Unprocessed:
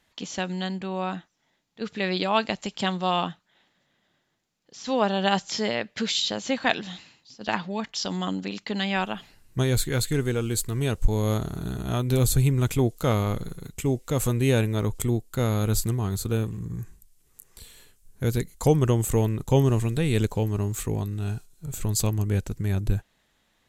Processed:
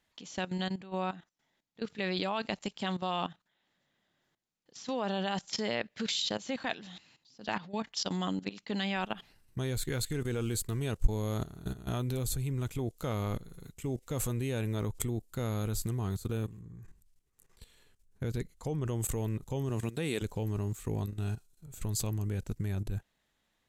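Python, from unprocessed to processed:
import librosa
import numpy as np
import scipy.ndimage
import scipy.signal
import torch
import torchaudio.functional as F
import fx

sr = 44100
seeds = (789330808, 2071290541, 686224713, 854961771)

y = fx.notch(x, sr, hz=7000.0, q=11.0, at=(8.98, 9.7))
y = fx.high_shelf(y, sr, hz=7300.0, db=-11.5, at=(16.61, 18.88))
y = fx.highpass(y, sr, hz=fx.line((19.69, 92.0), (20.21, 330.0)), slope=12, at=(19.69, 20.21), fade=0.02)
y = fx.level_steps(y, sr, step_db=15)
y = F.gain(torch.from_numpy(y), -2.5).numpy()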